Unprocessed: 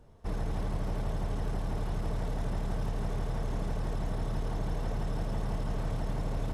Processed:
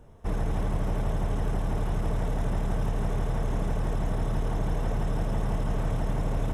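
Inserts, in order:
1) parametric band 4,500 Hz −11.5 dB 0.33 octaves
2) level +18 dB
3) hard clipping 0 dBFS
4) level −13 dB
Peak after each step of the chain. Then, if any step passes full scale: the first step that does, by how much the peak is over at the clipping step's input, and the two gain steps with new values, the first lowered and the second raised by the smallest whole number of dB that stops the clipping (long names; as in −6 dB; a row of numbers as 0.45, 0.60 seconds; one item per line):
−21.0, −3.0, −3.0, −16.0 dBFS
no step passes full scale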